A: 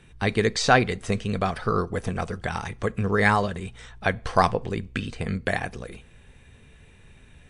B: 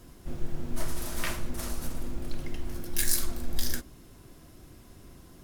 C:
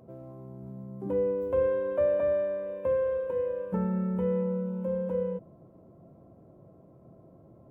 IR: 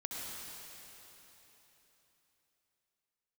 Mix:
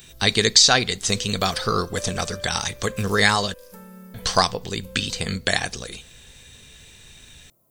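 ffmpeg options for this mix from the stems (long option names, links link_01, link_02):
-filter_complex "[0:a]lowpass=frequency=7300:width=0.5412,lowpass=frequency=7300:width=1.3066,aexciter=amount=3.9:drive=3.4:freq=3400,volume=0dB,asplit=3[link_01][link_02][link_03];[link_01]atrim=end=3.54,asetpts=PTS-STARTPTS,afade=type=out:start_time=3.536:duration=0.004:curve=hsin[link_04];[link_02]atrim=start=3.54:end=4.14,asetpts=PTS-STARTPTS,volume=0[link_05];[link_03]atrim=start=4.14,asetpts=PTS-STARTPTS,afade=type=in:duration=0.004:curve=hsin[link_06];[link_04][link_05][link_06]concat=n=3:v=0:a=1,asplit=2[link_07][link_08];[1:a]volume=-17.5dB,asplit=2[link_09][link_10];[link_10]volume=-20.5dB[link_11];[2:a]crystalizer=i=10:c=0,highshelf=frequency=8000:gain=10.5,volume=-19dB,asplit=2[link_12][link_13];[link_13]volume=-8.5dB[link_14];[link_08]apad=whole_len=239528[link_15];[link_09][link_15]sidechaincompress=threshold=-30dB:ratio=8:attack=6.8:release=1450[link_16];[3:a]atrim=start_sample=2205[link_17];[link_11][link_14]amix=inputs=2:normalize=0[link_18];[link_18][link_17]afir=irnorm=-1:irlink=0[link_19];[link_07][link_16][link_12][link_19]amix=inputs=4:normalize=0,highshelf=frequency=2100:gain=11.5,alimiter=limit=-2dB:level=0:latency=1:release=485"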